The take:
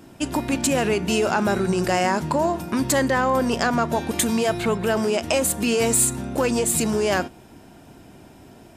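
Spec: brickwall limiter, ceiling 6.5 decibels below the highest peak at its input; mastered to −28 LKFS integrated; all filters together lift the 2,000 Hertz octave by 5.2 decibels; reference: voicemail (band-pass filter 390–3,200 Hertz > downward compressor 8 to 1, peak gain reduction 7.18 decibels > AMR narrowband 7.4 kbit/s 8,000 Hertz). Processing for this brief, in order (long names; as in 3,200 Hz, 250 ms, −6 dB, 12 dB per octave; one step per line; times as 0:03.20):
parametric band 2,000 Hz +7.5 dB
brickwall limiter −11 dBFS
band-pass filter 390–3,200 Hz
downward compressor 8 to 1, threshold −24 dBFS
level +2 dB
AMR narrowband 7.4 kbit/s 8,000 Hz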